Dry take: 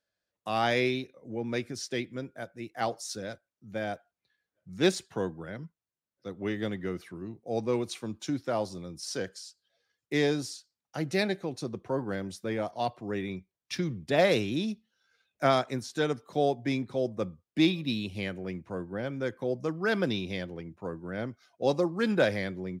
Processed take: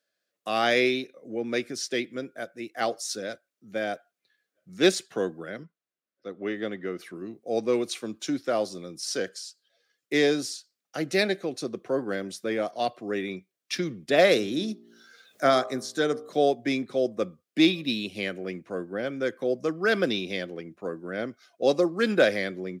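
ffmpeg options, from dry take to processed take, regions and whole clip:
-filter_complex "[0:a]asettb=1/sr,asplit=3[a][b][c];[a]atrim=end=5.634[d];[b]atrim=start=5.63:end=6.99,asetpts=PTS-STARTPTS,afade=t=in:d=0.004:c=qsin,afade=t=out:st=1.356:d=0.004:c=qsin,lowpass=f=2.1k:p=1,lowshelf=f=420:g=-3.5[e];[c]atrim=start=6.986[f];[d][e]acrossfade=d=0.004:c1=hsin:c2=qsin[g];[g][f]acrossfade=d=0.004:c1=qsin:c2=hsin,asettb=1/sr,asplit=3[h][i][j];[h]atrim=end=14.344[k];[i]atrim=start=14.34:end=16.31,asetpts=PTS-STARTPTS,afade=t=in:d=0.004:c=qsin,afade=t=out:st=1.966:d=0.004:c=qsin,equalizer=f=2.6k:t=o:w=0.43:g=-9,bandreject=f=57.53:t=h:w=4,bandreject=f=115.06:t=h:w=4,bandreject=f=172.59:t=h:w=4,bandreject=f=230.12:t=h:w=4,bandreject=f=287.65:t=h:w=4,bandreject=f=345.18:t=h:w=4,bandreject=f=402.71:t=h:w=4,bandreject=f=460.24:t=h:w=4,bandreject=f=517.77:t=h:w=4,bandreject=f=575.3:t=h:w=4,bandreject=f=632.83:t=h:w=4,bandreject=f=690.36:t=h:w=4,bandreject=f=747.89:t=h:w=4,bandreject=f=805.42:t=h:w=4,bandreject=f=862.95:t=h:w=4,bandreject=f=920.48:t=h:w=4,bandreject=f=978.01:t=h:w=4,bandreject=f=1.03554k:t=h:w=4,bandreject=f=1.09307k:t=h:w=4,bandreject=f=1.1506k:t=h:w=4,bandreject=f=1.20813k:t=h:w=4,bandreject=f=1.26566k:t=h:w=4,acompressor=mode=upward:threshold=-45dB:ratio=2.5:attack=3.2:release=140:knee=2.83:detection=peak[l];[j]atrim=start=16.306[m];[k][l]acrossfade=d=0.004:c1=hsin:c2=qsin[n];[n][m]acrossfade=d=0.004:c1=qsin:c2=hsin,highpass=260,equalizer=f=910:t=o:w=0.29:g=-12.5,volume=5.5dB"

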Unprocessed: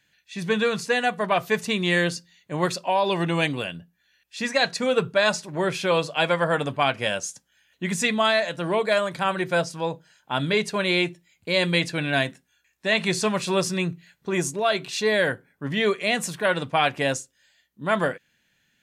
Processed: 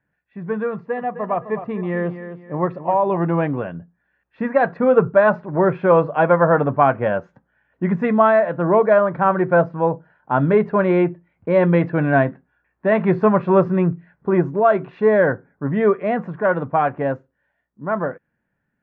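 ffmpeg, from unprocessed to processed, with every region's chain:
-filter_complex "[0:a]asettb=1/sr,asplit=3[a][b][c];[a]atrim=end=0.714[d];[b]atrim=start=0.71:end=3.17,asetpts=PTS-STARTPTS,afade=t=in:d=0.004:c=qsin,afade=t=out:st=2.456:d=0.004:c=qsin,asuperstop=centerf=1500:order=4:qfactor=7.2,aecho=1:1:258|516|774:0.266|0.0798|0.0239,atrim=end_sample=108486[e];[c]atrim=start=3.166[f];[d][e]acrossfade=d=0.004:c1=hsin:c2=qsin[g];[g][f]acrossfade=d=0.004:c1=qsin:c2=hsin,lowpass=f=1.4k:w=0.5412,lowpass=f=1.4k:w=1.3066,dynaudnorm=f=950:g=7:m=11.5dB"

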